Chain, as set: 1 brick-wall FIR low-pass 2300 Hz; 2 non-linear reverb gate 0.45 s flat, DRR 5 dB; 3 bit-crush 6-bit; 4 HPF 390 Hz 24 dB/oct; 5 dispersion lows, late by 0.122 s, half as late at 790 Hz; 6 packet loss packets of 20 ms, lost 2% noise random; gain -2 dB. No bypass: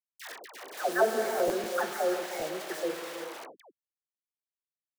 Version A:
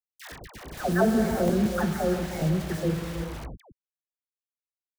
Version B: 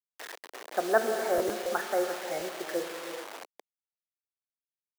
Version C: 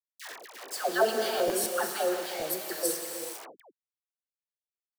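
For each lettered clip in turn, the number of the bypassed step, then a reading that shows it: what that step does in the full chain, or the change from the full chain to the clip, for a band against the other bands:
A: 4, 125 Hz band +26.5 dB; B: 5, crest factor change +2.5 dB; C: 1, 8 kHz band +8.5 dB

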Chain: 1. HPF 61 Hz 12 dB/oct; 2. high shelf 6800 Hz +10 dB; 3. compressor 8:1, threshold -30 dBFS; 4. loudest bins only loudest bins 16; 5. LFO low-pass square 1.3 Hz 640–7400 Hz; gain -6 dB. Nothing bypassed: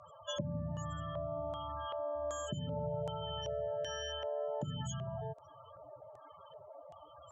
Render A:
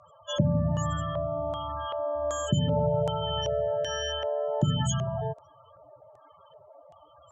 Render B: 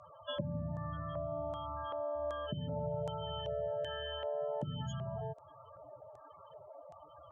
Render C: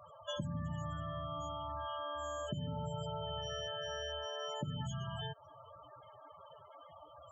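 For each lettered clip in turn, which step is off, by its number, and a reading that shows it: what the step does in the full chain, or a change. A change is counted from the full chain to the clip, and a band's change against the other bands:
3, mean gain reduction 7.0 dB; 2, 4 kHz band -2.0 dB; 5, 500 Hz band -6.0 dB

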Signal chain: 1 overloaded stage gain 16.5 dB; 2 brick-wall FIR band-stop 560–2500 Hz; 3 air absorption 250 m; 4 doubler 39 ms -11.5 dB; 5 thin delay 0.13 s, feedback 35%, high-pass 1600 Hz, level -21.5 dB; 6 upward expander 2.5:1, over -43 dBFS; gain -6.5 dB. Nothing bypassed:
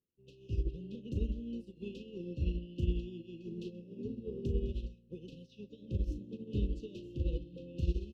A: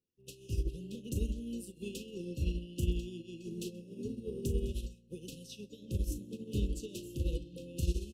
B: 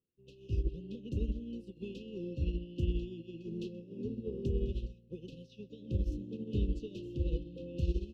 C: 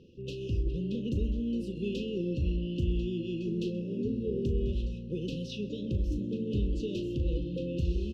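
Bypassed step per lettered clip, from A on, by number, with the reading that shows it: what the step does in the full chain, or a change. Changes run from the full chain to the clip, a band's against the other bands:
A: 3, 4 kHz band +6.0 dB; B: 4, crest factor change -1.5 dB; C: 6, 125 Hz band -4.0 dB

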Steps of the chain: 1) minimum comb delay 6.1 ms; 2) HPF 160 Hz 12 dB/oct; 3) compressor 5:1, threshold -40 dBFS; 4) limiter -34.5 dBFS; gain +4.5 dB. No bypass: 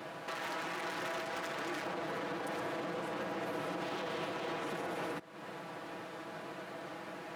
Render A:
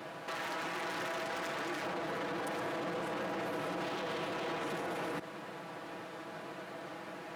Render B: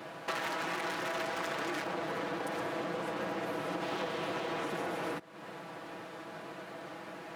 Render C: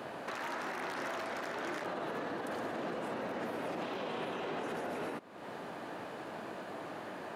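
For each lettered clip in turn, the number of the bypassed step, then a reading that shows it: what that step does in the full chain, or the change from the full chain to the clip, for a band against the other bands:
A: 3, mean gain reduction 10.5 dB; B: 4, mean gain reduction 2.0 dB; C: 1, 8 kHz band -2.5 dB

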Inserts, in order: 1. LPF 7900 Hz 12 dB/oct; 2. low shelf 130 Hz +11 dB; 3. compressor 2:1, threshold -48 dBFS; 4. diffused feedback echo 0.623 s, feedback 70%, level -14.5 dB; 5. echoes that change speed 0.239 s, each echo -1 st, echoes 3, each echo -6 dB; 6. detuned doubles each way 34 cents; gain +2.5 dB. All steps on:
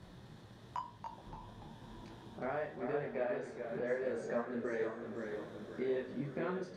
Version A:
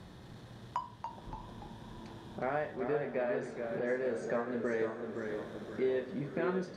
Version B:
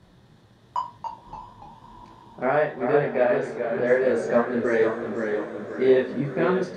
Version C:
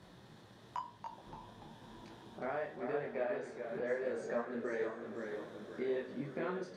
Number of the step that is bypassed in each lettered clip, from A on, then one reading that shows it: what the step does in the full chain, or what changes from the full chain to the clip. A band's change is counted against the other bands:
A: 6, loudness change +3.5 LU; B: 3, mean gain reduction 10.0 dB; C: 2, 125 Hz band -4.0 dB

